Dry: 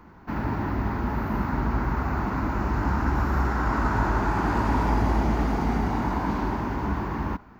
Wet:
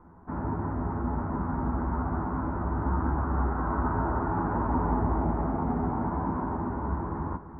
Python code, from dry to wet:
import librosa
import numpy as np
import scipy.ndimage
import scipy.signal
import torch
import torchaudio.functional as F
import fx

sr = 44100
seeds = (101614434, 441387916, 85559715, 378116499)

y = scipy.signal.sosfilt(scipy.signal.butter(4, 1300.0, 'lowpass', fs=sr, output='sos'), x)
y = fx.doubler(y, sr, ms=12.0, db=-4.0)
y = y + 10.0 ** (-11.5 / 20.0) * np.pad(y, (int(342 * sr / 1000.0), 0))[:len(y)]
y = F.gain(torch.from_numpy(y), -4.5).numpy()